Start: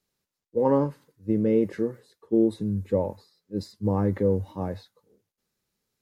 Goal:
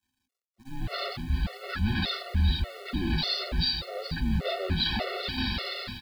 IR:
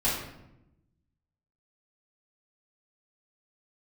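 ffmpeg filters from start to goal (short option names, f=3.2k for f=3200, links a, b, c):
-af "aeval=exprs='val(0)+0.5*0.0596*sgn(val(0))':c=same,areverse,acompressor=threshold=-30dB:ratio=8,areverse,aresample=11025,aresample=44100,aecho=1:1:6.2:0.5,dynaudnorm=f=550:g=3:m=16dB,equalizer=f=125:t=o:w=0.33:g=-10,equalizer=f=500:t=o:w=0.33:g=-9,equalizer=f=1.25k:t=o:w=0.33:g=-10,agate=range=-35dB:threshold=-28dB:ratio=16:detection=peak,equalizer=f=130:t=o:w=0.94:g=-4.5,aecho=1:1:413:0.299,acrusher=bits=8:dc=4:mix=0:aa=0.000001,afreqshift=-260,afftfilt=real='re*gt(sin(2*PI*1.7*pts/sr)*(1-2*mod(floor(b*sr/1024/370),2)),0)':imag='im*gt(sin(2*PI*1.7*pts/sr)*(1-2*mod(floor(b*sr/1024/370),2)),0)':win_size=1024:overlap=0.75,volume=-7dB"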